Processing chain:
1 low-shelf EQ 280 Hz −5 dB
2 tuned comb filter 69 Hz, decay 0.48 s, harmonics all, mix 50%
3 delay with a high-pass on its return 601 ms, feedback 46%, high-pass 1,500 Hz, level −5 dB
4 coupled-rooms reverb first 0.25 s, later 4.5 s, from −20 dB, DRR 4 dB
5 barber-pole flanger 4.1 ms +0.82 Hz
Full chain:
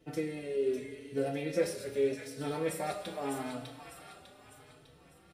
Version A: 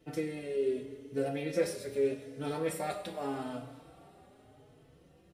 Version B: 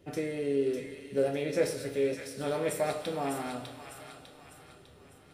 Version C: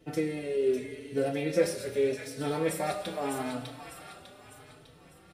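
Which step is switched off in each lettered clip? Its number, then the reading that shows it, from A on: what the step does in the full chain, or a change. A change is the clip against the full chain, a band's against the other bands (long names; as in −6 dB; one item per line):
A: 3, change in momentary loudness spread −9 LU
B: 5, change in integrated loudness +3.0 LU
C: 2, change in integrated loudness +4.0 LU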